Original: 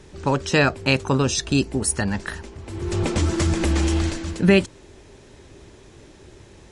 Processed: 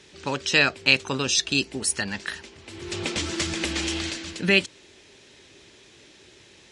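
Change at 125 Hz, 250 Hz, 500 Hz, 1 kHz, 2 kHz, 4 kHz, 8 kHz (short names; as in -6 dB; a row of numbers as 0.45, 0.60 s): -12.5, -8.0, -7.0, -6.0, +2.0, +4.5, -0.5 dB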